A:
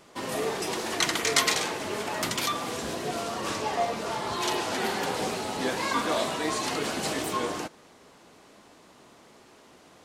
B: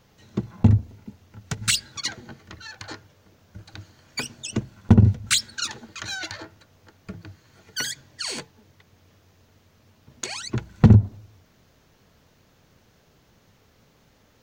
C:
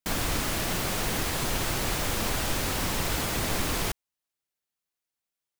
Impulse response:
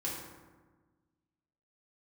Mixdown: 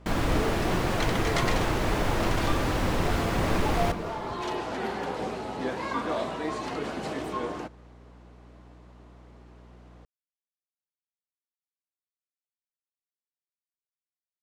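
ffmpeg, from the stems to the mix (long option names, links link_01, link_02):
-filter_complex "[0:a]aeval=exprs='val(0)+0.00355*(sin(2*PI*60*n/s)+sin(2*PI*2*60*n/s)/2+sin(2*PI*3*60*n/s)/3+sin(2*PI*4*60*n/s)/4+sin(2*PI*5*60*n/s)/5)':channel_layout=same,volume=-1dB[link_01];[2:a]volume=3dB,asplit=3[link_02][link_03][link_04];[link_03]volume=-14.5dB[link_05];[link_04]volume=-18.5dB[link_06];[3:a]atrim=start_sample=2205[link_07];[link_05][link_07]afir=irnorm=-1:irlink=0[link_08];[link_06]aecho=0:1:195|390|585|780|975|1170|1365|1560:1|0.54|0.292|0.157|0.085|0.0459|0.0248|0.0134[link_09];[link_01][link_02][link_08][link_09]amix=inputs=4:normalize=0,lowpass=frequency=1400:poles=1"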